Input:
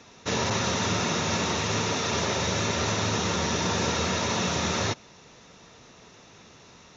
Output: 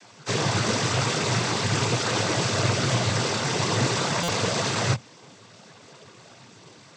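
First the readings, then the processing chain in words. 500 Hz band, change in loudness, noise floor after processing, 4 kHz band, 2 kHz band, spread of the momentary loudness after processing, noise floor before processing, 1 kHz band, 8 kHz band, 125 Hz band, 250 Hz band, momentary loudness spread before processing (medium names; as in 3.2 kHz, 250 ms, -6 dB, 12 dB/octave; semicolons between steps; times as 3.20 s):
+2.0 dB, +2.0 dB, -51 dBFS, +2.0 dB, +2.0 dB, 2 LU, -52 dBFS, +1.0 dB, no reading, +5.5 dB, +1.0 dB, 1 LU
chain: chorus voices 6, 0.35 Hz, delay 19 ms, depth 1.5 ms; noise-vocoded speech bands 16; buffer glitch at 4.23 s, samples 256, times 8; trim +5.5 dB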